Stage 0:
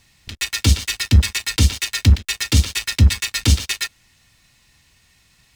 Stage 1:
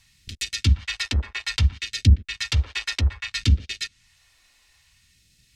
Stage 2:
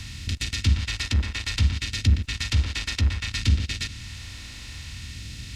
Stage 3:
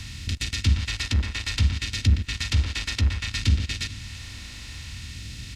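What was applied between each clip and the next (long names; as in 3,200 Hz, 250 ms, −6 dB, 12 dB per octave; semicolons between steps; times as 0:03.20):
treble cut that deepens with the level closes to 1,100 Hz, closed at −11 dBFS; all-pass phaser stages 2, 0.61 Hz, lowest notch 130–1,000 Hz; level −3.5 dB
compressor on every frequency bin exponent 0.4; level −6 dB
repeating echo 448 ms, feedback 57%, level −22.5 dB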